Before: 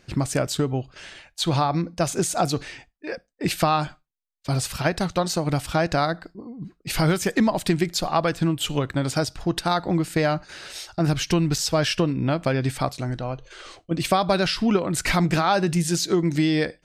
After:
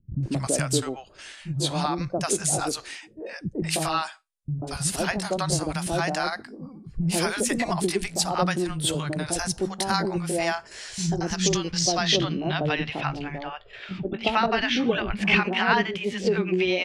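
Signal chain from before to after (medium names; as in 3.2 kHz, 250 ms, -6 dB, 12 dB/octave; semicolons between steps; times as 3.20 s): pitch bend over the whole clip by +3 st starting unshifted; three bands offset in time lows, mids, highs 140/230 ms, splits 210/730 Hz; low-pass sweep 9.9 kHz -> 2.7 kHz, 10.51–13.06 s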